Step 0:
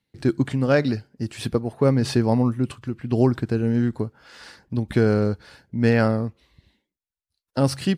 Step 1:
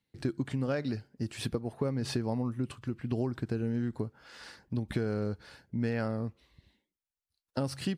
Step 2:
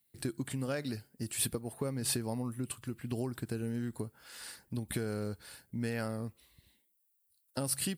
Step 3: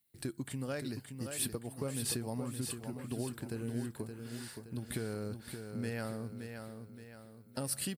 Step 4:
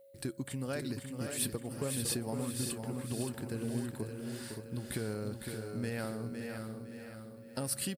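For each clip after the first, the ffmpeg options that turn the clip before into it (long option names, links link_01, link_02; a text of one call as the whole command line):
ffmpeg -i in.wav -af "acompressor=threshold=-23dB:ratio=6,volume=-5dB" out.wav
ffmpeg -i in.wav -af "highshelf=frequency=2500:gain=9,aexciter=amount=5.1:drive=5:freq=8100,volume=-4.5dB" out.wav
ffmpeg -i in.wav -af "aecho=1:1:571|1142|1713|2284|2855:0.447|0.197|0.0865|0.0381|0.0167,volume=-3dB" out.wav
ffmpeg -i in.wav -af "aeval=exprs='val(0)+0.00141*sin(2*PI*550*n/s)':channel_layout=same,aecho=1:1:507|1014|1521:0.447|0.121|0.0326,volume=1dB" out.wav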